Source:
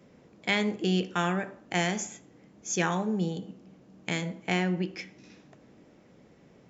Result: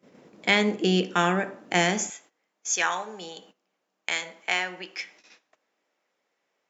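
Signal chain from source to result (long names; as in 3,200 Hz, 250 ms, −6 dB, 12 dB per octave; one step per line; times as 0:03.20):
high-pass filter 200 Hz 12 dB per octave, from 0:02.10 860 Hz
noise gate −58 dBFS, range −16 dB
level +6 dB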